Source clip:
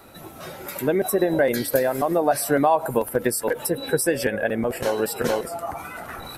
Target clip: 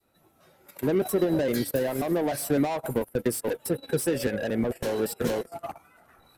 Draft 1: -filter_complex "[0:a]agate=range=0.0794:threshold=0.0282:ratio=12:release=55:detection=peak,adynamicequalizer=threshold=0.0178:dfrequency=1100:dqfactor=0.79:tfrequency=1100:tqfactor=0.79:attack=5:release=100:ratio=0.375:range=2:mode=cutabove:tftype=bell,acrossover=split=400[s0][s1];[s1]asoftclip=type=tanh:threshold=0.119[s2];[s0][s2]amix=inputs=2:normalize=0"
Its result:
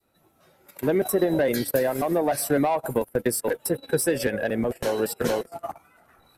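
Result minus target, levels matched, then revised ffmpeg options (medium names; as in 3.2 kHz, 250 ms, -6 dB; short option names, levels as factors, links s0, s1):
saturation: distortion -9 dB
-filter_complex "[0:a]agate=range=0.0794:threshold=0.0282:ratio=12:release=55:detection=peak,adynamicequalizer=threshold=0.0178:dfrequency=1100:dqfactor=0.79:tfrequency=1100:tqfactor=0.79:attack=5:release=100:ratio=0.375:range=2:mode=cutabove:tftype=bell,acrossover=split=400[s0][s1];[s1]asoftclip=type=tanh:threshold=0.0335[s2];[s0][s2]amix=inputs=2:normalize=0"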